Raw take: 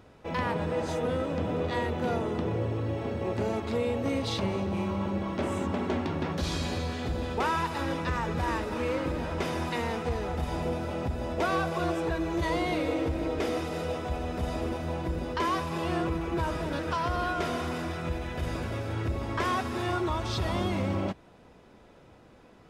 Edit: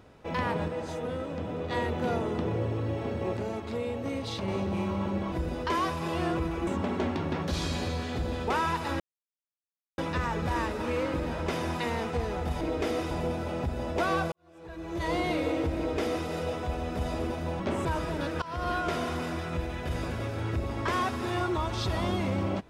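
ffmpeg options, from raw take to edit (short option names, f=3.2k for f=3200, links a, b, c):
-filter_complex "[0:a]asplit=14[a][b][c][d][e][f][g][h][i][j][k][l][m][n];[a]atrim=end=0.682[o];[b]atrim=start=0.678:end=1.702,asetpts=PTS-STARTPTS,volume=-4.5dB[p];[c]atrim=start=1.698:end=3.372[q];[d]atrim=start=3.368:end=4.482,asetpts=PTS-STARTPTS,volume=-4dB[r];[e]atrim=start=4.478:end=5.322[s];[f]atrim=start=15.018:end=16.372[t];[g]atrim=start=5.568:end=7.9,asetpts=PTS-STARTPTS,afade=t=out:st=2.328:d=0.004:c=hsin,apad=pad_dur=0.98[u];[h]atrim=start=7.9:end=10.532,asetpts=PTS-STARTPTS,afade=t=in:d=0.004:c=hsin[v];[i]atrim=start=13.188:end=13.692[w];[j]atrim=start=10.528:end=11.74,asetpts=PTS-STARTPTS,afade=t=out:st=1.208:d=0.004:c=hsin[x];[k]atrim=start=11.74:end=15.022,asetpts=PTS-STARTPTS,afade=t=in:d=0.83:c=qua[y];[l]atrim=start=5.318:end=5.572[z];[m]atrim=start=16.368:end=16.94,asetpts=PTS-STARTPTS,afade=t=out:st=0.568:d=0.004:c=hsin:silence=0.125893[aa];[n]atrim=start=16.94,asetpts=PTS-STARTPTS,afade=t=in:d=0.27:silence=0.125893[ab];[o][p]acrossfade=d=0.004:c1=hsin:c2=hsin[ac];[ac][q]acrossfade=d=0.004:c1=hsin:c2=hsin[ad];[ad][r]acrossfade=d=0.004:c1=hsin:c2=hsin[ae];[ae][s]acrossfade=d=0.004:c1=hsin:c2=hsin[af];[af][t]acrossfade=d=0.004:c1=hsin:c2=hsin[ag];[u][v]concat=n=2:v=0:a=1[ah];[ag][ah]acrossfade=d=0.004:c1=hsin:c2=hsin[ai];[ai][w]acrossfade=d=0.004:c1=hsin:c2=hsin[aj];[x][y]concat=n=2:v=0:a=1[ak];[aj][ak]acrossfade=d=0.004:c1=hsin:c2=hsin[al];[al][z]acrossfade=d=0.004:c1=hsin:c2=hsin[am];[aa][ab]concat=n=2:v=0:a=1[an];[am][an]acrossfade=d=0.004:c1=hsin:c2=hsin"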